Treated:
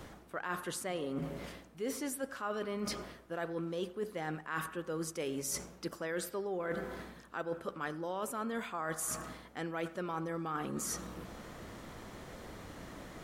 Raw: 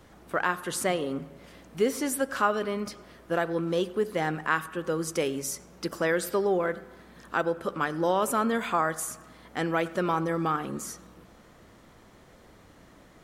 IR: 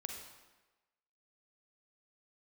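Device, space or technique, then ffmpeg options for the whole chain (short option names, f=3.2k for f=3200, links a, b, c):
compression on the reversed sound: -af "areverse,acompressor=threshold=-41dB:ratio=10,areverse,volume=6dB"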